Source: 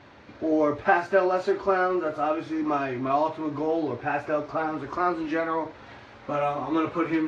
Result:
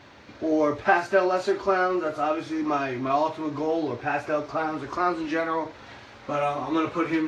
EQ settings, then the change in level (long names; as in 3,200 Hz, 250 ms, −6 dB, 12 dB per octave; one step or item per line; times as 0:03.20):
high-shelf EQ 4,000 Hz +10 dB
0.0 dB